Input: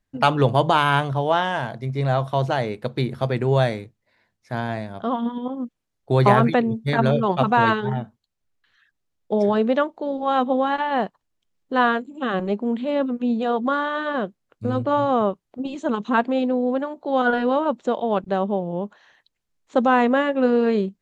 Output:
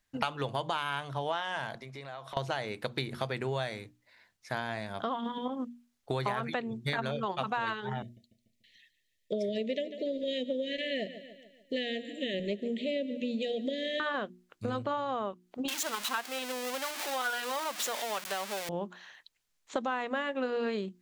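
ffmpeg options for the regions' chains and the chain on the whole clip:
-filter_complex "[0:a]asettb=1/sr,asplit=3[a][b][c];[a]atrim=end=1.754[d];[b]atrim=start=1.75:end=2.37,asetpts=PTS-STARTPTS,afade=t=in:d=0.004:c=qsin,afade=t=out:st=0.616:d=0.004:c=qsin,highpass=f=340:p=1,highshelf=f=5.6k:g=-5.5,acompressor=threshold=-37dB:ratio=12:attack=3.2:release=140:knee=1:detection=peak[e];[c]atrim=start=2.366[f];[d][e]acrossfade=d=0.004:c1=hsin:c2=qsin[g];[g][f]acrossfade=d=0.004:c1=qsin:c2=hsin,asettb=1/sr,asplit=3[h][i][j];[h]atrim=end=8.024[k];[i]atrim=start=8.02:end=14,asetpts=PTS-STARTPTS,afade=t=in:d=0.004:c=qsin,afade=t=out:st=5.976:d=0.004:c=qsin,asuperstop=centerf=1100:order=20:qfactor=0.93,aecho=1:1:146|292|438|584|730:0.141|0.0735|0.0382|0.0199|0.0103,atrim=end_sample=263718[l];[j]atrim=start=13.996[m];[k][l]acrossfade=d=0.004:c1=hsin:c2=qsin[n];[n][m]acrossfade=d=0.004:c1=qsin:c2=hsin,asettb=1/sr,asplit=3[o][p][q];[o]atrim=end=15.684[r];[p]atrim=start=15.68:end=18.69,asetpts=PTS-STARTPTS,afade=t=in:d=0.004:c=qsin,afade=t=out:st=3.006:d=0.004:c=qsin,aeval=exprs='val(0)+0.5*0.0596*sgn(val(0))':c=same,highpass=f=1.2k:p=1[s];[q]atrim=start=18.686[t];[r][s]acrossfade=d=0.004:c1=hsin:c2=qsin[u];[u][t]acrossfade=d=0.004:c1=qsin:c2=hsin,tiltshelf=f=930:g=-6,bandreject=f=60:t=h:w=6,bandreject=f=120:t=h:w=6,bandreject=f=180:t=h:w=6,bandreject=f=240:t=h:w=6,bandreject=f=300:t=h:w=6,bandreject=f=360:t=h:w=6,acompressor=threshold=-30dB:ratio=6"

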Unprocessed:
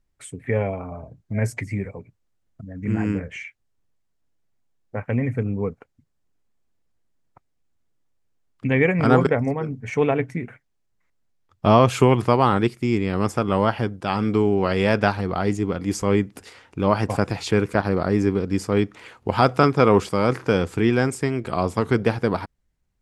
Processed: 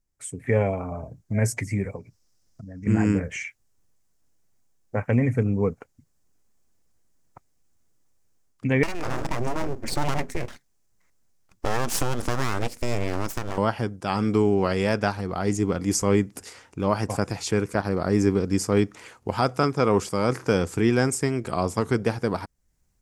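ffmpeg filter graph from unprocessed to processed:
-filter_complex "[0:a]asettb=1/sr,asplit=3[a][b][c];[a]atrim=end=1.964[d];[b]atrim=start=1.96:end=2.87,asetpts=PTS-STARTPTS,afade=t=in:d=0.004:c=qsin,afade=t=out:st=0.906:d=0.004:c=qsin,equalizer=f=5.2k:w=2.3:g=11.5,acompressor=threshold=-51dB:ratio=1.5:attack=3.2:release=140:knee=1:detection=peak[e];[c]atrim=start=2.866[f];[d][e]acrossfade=d=0.004:c1=hsin:c2=qsin[g];[g][f]acrossfade=d=0.004:c1=qsin:c2=hsin,asettb=1/sr,asplit=3[h][i][j];[h]atrim=end=8.834[k];[i]atrim=start=8.83:end=13.58,asetpts=PTS-STARTPTS,afade=t=in:d=0.004:c=qsin,afade=t=out:st=4.746:d=0.004:c=qsin,acompressor=threshold=-23dB:ratio=3:attack=3.2:release=140:knee=1:detection=peak,aeval=exprs='abs(val(0))':c=same[l];[j]atrim=start=13.576[m];[k][l]acrossfade=d=0.004:c1=hsin:c2=qsin[n];[n][m]acrossfade=d=0.004:c1=qsin:c2=hsin,highshelf=f=4.7k:t=q:w=1.5:g=6.5,dynaudnorm=f=200:g=3:m=11.5dB,volume=-7dB"

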